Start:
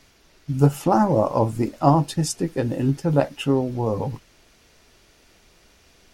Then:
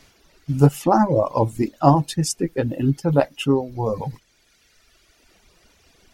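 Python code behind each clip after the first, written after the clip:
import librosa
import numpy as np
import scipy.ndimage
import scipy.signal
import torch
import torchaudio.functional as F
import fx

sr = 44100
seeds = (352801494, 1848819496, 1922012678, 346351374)

y = fx.dereverb_blind(x, sr, rt60_s=1.7)
y = y * 10.0 ** (2.5 / 20.0)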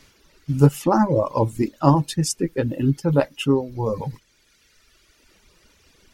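y = fx.peak_eq(x, sr, hz=720.0, db=-11.0, octaves=0.22)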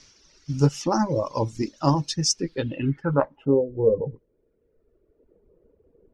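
y = fx.filter_sweep_lowpass(x, sr, from_hz=5700.0, to_hz=460.0, start_s=2.39, end_s=3.66, q=4.9)
y = y * 10.0 ** (-5.0 / 20.0)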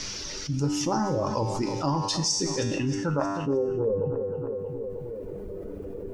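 y = fx.comb_fb(x, sr, f0_hz=98.0, decay_s=0.83, harmonics='all', damping=0.0, mix_pct=80)
y = fx.echo_feedback(y, sr, ms=314, feedback_pct=47, wet_db=-16.5)
y = fx.env_flatten(y, sr, amount_pct=70)
y = y * 10.0 ** (2.5 / 20.0)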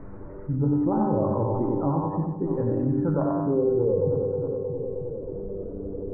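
y = scipy.ndimage.gaussian_filter1d(x, 8.3, mode='constant')
y = fx.echo_feedback(y, sr, ms=92, feedback_pct=35, wet_db=-4)
y = y * 10.0 ** (2.0 / 20.0)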